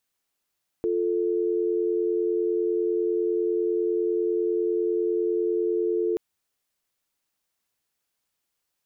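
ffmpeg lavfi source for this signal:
-f lavfi -i "aevalsrc='0.0596*(sin(2*PI*350*t)+sin(2*PI*440*t))':d=5.33:s=44100"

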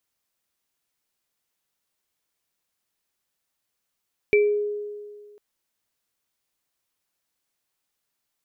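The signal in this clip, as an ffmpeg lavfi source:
-f lavfi -i "aevalsrc='0.211*pow(10,-3*t/1.84)*sin(2*PI*415*t)+0.133*pow(10,-3*t/0.3)*sin(2*PI*2330*t)':d=1.05:s=44100"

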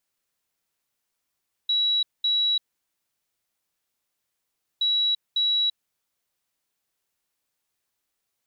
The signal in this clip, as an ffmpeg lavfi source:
-f lavfi -i "aevalsrc='0.106*sin(2*PI*3900*t)*clip(min(mod(mod(t,3.12),0.55),0.34-mod(mod(t,3.12),0.55))/0.005,0,1)*lt(mod(t,3.12),1.1)':d=6.24:s=44100"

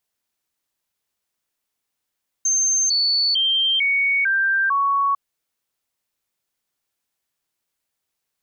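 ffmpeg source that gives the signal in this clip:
-f lavfi -i "aevalsrc='0.158*clip(min(mod(t,0.45),0.45-mod(t,0.45))/0.005,0,1)*sin(2*PI*6310*pow(2,-floor(t/0.45)/2)*mod(t,0.45))':d=2.7:s=44100"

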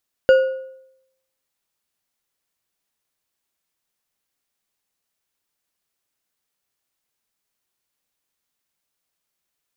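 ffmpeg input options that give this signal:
-f lavfi -i "aevalsrc='0.473*pow(10,-3*t/0.79)*sin(2*PI*526*t)+0.133*pow(10,-3*t/0.583)*sin(2*PI*1450.2*t)+0.0376*pow(10,-3*t/0.476)*sin(2*PI*2842.5*t)+0.0106*pow(10,-3*t/0.41)*sin(2*PI*4698.8*t)+0.00299*pow(10,-3*t/0.363)*sin(2*PI*7016.8*t)':d=1.55:s=44100"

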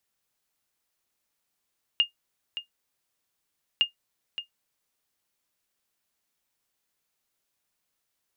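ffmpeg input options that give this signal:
-f lavfi -i "aevalsrc='0.237*(sin(2*PI*2830*mod(t,1.81))*exp(-6.91*mod(t,1.81)/0.12)+0.251*sin(2*PI*2830*max(mod(t,1.81)-0.57,0))*exp(-6.91*max(mod(t,1.81)-0.57,0)/0.12))':d=3.62:s=44100"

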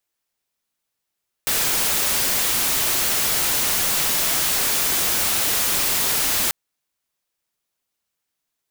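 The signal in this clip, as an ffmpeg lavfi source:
-f lavfi -i "anoisesrc=c=white:a=0.163:d=5.04:r=44100:seed=1"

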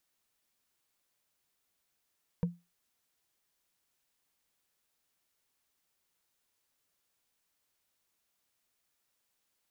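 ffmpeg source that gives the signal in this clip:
-f lavfi -i "aevalsrc='0.0708*pow(10,-3*t/0.24)*sin(2*PI*173*t)+0.0266*pow(10,-3*t/0.071)*sin(2*PI*477*t)+0.01*pow(10,-3*t/0.032)*sin(2*PI*934.9*t)+0.00376*pow(10,-3*t/0.017)*sin(2*PI*1545.4*t)+0.00141*pow(10,-3*t/0.011)*sin(2*PI*2307.8*t)':d=0.45:s=44100"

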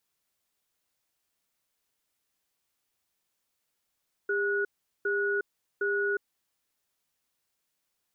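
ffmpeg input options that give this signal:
-f lavfi -i "aevalsrc='0.0398*(sin(2*PI*403*t)+sin(2*PI*1460*t))*clip(min(mod(t,0.76),0.36-mod(t,0.76))/0.005,0,1)':d=2.01:s=44100"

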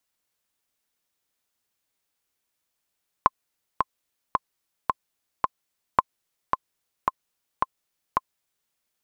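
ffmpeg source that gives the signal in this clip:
-f lavfi -i "aevalsrc='pow(10,(-2.5-5*gte(mod(t,5*60/110),60/110))/20)*sin(2*PI*1050*mod(t,60/110))*exp(-6.91*mod(t,60/110)/0.03)':d=5.45:s=44100"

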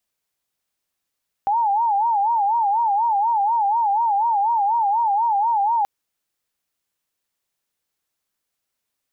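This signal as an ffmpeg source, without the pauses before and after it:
-f lavfi -i "aevalsrc='0.158*sin(2*PI*(868.5*t-77.5/(2*PI*4.1)*sin(2*PI*4.1*t)))':d=4.38:s=44100"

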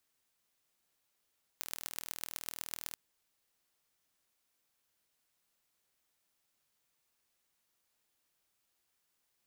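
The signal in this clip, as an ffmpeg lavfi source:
-f lavfi -i "aevalsrc='0.335*eq(mod(n,1105),0)*(0.5+0.5*eq(mod(n,5525),0))':d=1.33:s=44100"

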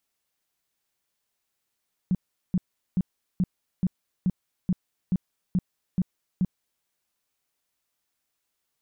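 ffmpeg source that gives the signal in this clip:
-f lavfi -i "aevalsrc='0.112*sin(2*PI*183*mod(t,0.43))*lt(mod(t,0.43),7/183)':d=4.73:s=44100"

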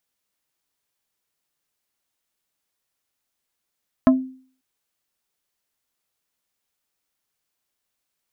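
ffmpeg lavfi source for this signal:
-f lavfi -i "aevalsrc='0.398*pow(10,-3*t/0.47)*sin(2*PI*260*t)+0.224*pow(10,-3*t/0.157)*sin(2*PI*650*t)+0.126*pow(10,-3*t/0.089)*sin(2*PI*1040*t)+0.0708*pow(10,-3*t/0.068)*sin(2*PI*1300*t)+0.0398*pow(10,-3*t/0.05)*sin(2*PI*1690*t)':d=0.54:s=44100"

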